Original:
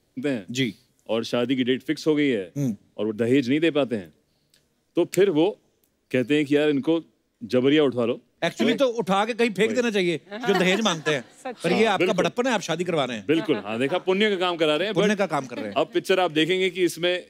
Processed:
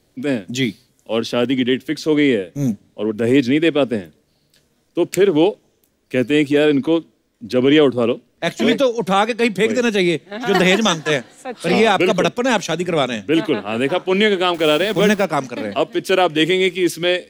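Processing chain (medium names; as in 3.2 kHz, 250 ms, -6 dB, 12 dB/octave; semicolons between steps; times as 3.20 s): 14.54–15.25 s: send-on-delta sampling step -37 dBFS; transient shaper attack -6 dB, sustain -2 dB; trim +7.5 dB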